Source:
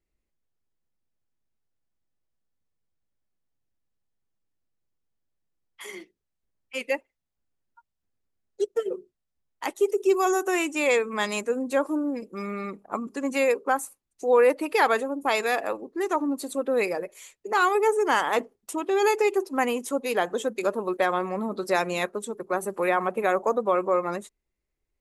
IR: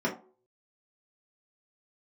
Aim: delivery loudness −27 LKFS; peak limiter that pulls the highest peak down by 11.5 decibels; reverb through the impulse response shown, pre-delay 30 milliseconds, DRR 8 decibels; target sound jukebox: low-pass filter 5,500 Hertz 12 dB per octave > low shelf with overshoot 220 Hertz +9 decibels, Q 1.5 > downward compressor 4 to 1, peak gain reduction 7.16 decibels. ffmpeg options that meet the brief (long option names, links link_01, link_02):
-filter_complex "[0:a]alimiter=limit=-20dB:level=0:latency=1,asplit=2[link_01][link_02];[1:a]atrim=start_sample=2205,adelay=30[link_03];[link_02][link_03]afir=irnorm=-1:irlink=0,volume=-18dB[link_04];[link_01][link_04]amix=inputs=2:normalize=0,lowpass=5500,lowshelf=frequency=220:width_type=q:width=1.5:gain=9,acompressor=threshold=-28dB:ratio=4,volume=6dB"